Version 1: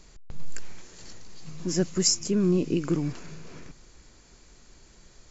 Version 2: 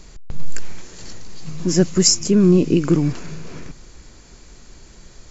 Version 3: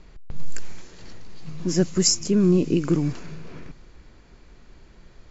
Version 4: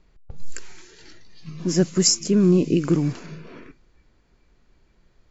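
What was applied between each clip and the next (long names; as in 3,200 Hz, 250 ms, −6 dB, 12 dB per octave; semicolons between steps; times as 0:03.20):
low-shelf EQ 330 Hz +3 dB; level +8 dB
low-pass that shuts in the quiet parts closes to 2,900 Hz, open at −10.5 dBFS; level −5 dB
noise reduction from a noise print of the clip's start 12 dB; level +1.5 dB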